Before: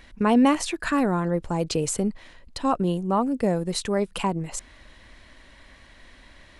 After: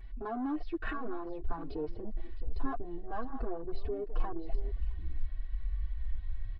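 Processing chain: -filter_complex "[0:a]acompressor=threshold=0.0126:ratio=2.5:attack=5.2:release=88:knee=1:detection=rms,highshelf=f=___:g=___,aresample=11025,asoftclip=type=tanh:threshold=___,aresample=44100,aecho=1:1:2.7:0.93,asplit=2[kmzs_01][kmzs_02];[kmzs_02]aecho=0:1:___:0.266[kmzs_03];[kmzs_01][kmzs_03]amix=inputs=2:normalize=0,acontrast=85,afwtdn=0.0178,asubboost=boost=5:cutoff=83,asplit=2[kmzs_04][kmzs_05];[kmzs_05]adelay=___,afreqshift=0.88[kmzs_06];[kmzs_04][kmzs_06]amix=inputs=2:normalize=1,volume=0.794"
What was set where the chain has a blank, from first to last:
3300, -9.5, 0.0158, 663, 5.7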